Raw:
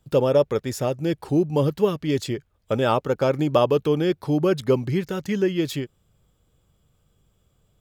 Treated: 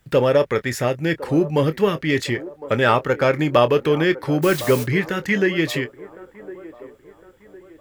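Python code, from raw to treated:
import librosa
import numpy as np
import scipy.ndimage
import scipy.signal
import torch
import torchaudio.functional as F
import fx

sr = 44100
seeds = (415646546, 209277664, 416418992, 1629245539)

p1 = fx.peak_eq(x, sr, hz=1900.0, db=14.5, octaves=0.86)
p2 = fx.quant_dither(p1, sr, seeds[0], bits=12, dither='none')
p3 = 10.0 ** (-14.0 / 20.0) * np.tanh(p2 / 10.0 ** (-14.0 / 20.0))
p4 = p2 + F.gain(torch.from_numpy(p3), -7.0).numpy()
p5 = fx.dmg_noise_colour(p4, sr, seeds[1], colour='white', level_db=-32.0, at=(4.42, 4.83), fade=0.02)
p6 = fx.doubler(p5, sr, ms=25.0, db=-13.0)
p7 = p6 + fx.echo_wet_bandpass(p6, sr, ms=1058, feedback_pct=40, hz=600.0, wet_db=-15.0, dry=0)
y = F.gain(torch.from_numpy(p7), -1.0).numpy()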